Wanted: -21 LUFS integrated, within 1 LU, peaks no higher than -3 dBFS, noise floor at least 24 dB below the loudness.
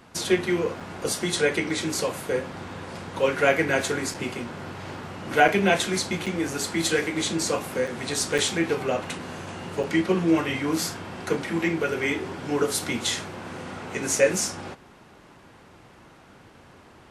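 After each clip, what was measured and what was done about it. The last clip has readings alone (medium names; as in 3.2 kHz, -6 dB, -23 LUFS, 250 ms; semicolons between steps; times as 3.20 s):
dropouts 7; longest dropout 5.3 ms; loudness -25.5 LUFS; peak level -3.5 dBFS; loudness target -21.0 LUFS
-> interpolate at 0.80/4.14/5.48/6.26/7.87/8.38/9.83 s, 5.3 ms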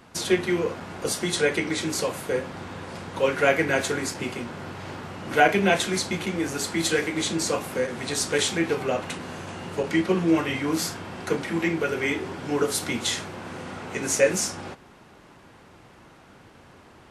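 dropouts 0; loudness -25.5 LUFS; peak level -3.5 dBFS; loudness target -21.0 LUFS
-> trim +4.5 dB; peak limiter -3 dBFS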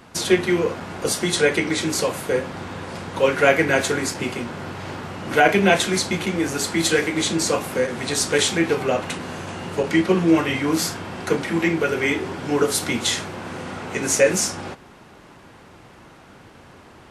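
loudness -21.0 LUFS; peak level -3.0 dBFS; noise floor -47 dBFS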